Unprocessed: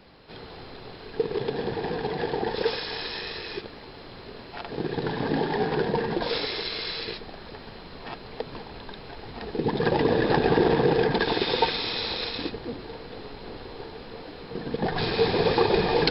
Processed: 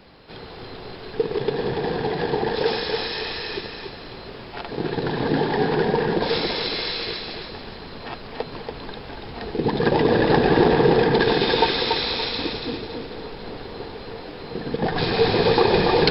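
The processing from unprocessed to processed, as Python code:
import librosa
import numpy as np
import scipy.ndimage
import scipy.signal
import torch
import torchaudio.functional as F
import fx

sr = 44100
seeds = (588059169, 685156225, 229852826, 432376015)

y = fx.echo_feedback(x, sr, ms=284, feedback_pct=36, wet_db=-5.0)
y = F.gain(torch.from_numpy(y), 3.5).numpy()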